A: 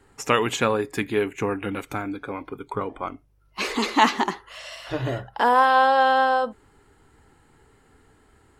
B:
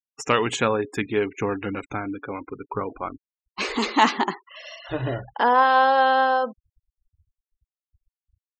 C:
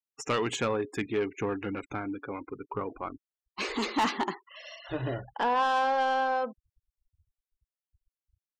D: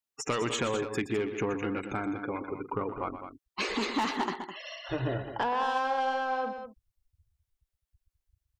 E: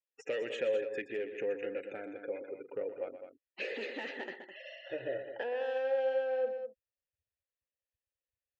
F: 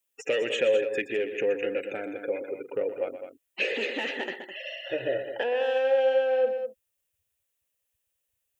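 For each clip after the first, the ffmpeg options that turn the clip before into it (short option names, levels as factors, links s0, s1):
-af "asoftclip=type=hard:threshold=0.473,afftfilt=real='re*gte(hypot(re,im),0.0158)':imag='im*gte(hypot(re,im),0.0158)':win_size=1024:overlap=0.75"
-af "equalizer=f=340:t=o:w=0.51:g=2.5,asoftclip=type=tanh:threshold=0.188,volume=0.531"
-filter_complex "[0:a]acompressor=threshold=0.0316:ratio=6,asplit=2[s0][s1];[s1]aecho=0:1:122.4|207:0.282|0.316[s2];[s0][s2]amix=inputs=2:normalize=0,volume=1.41"
-filter_complex "[0:a]asplit=3[s0][s1][s2];[s0]bandpass=f=530:t=q:w=8,volume=1[s3];[s1]bandpass=f=1840:t=q:w=8,volume=0.501[s4];[s2]bandpass=f=2480:t=q:w=8,volume=0.355[s5];[s3][s4][s5]amix=inputs=3:normalize=0,volume=1.78"
-af "aexciter=amount=1.2:drive=6.8:freq=2500,volume=2.66"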